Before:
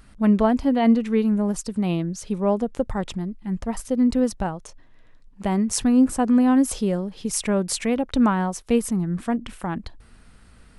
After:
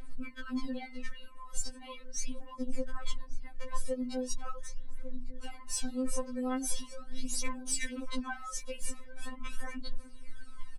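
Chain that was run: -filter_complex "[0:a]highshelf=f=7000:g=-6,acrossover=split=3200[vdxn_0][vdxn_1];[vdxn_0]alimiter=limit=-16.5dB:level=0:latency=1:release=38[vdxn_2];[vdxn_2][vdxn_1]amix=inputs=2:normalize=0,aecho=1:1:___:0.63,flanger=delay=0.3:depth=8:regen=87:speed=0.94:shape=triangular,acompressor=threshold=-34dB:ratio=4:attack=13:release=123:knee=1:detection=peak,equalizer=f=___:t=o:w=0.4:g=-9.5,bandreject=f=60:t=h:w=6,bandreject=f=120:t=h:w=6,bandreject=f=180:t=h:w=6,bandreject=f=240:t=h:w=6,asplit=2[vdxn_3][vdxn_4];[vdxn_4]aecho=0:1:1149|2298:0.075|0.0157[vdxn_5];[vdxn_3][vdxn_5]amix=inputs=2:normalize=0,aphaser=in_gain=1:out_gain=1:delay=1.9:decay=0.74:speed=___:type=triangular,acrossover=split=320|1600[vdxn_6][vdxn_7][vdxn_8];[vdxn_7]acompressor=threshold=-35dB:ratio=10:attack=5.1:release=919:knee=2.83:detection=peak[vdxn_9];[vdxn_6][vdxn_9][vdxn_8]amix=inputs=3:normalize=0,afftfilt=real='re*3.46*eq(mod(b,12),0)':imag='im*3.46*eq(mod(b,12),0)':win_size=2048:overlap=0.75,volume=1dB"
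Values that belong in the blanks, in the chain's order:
1.8, 630, 0.4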